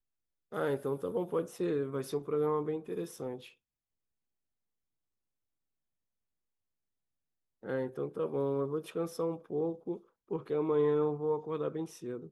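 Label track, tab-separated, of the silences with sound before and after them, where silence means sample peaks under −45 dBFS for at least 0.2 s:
3.480000	7.630000	silence
9.980000	10.310000	silence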